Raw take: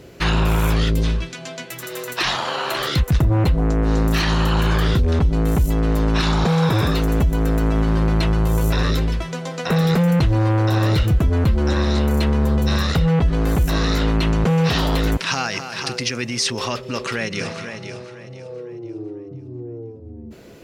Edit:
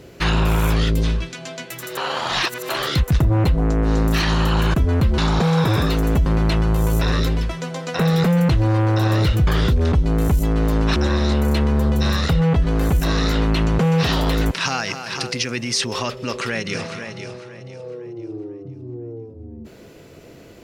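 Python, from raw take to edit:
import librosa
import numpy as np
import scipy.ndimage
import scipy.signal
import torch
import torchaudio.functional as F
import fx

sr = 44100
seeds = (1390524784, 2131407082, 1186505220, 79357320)

y = fx.edit(x, sr, fx.reverse_span(start_s=1.97, length_s=0.72),
    fx.swap(start_s=4.74, length_s=1.49, other_s=11.18, other_length_s=0.44),
    fx.cut(start_s=7.31, length_s=0.66), tone=tone)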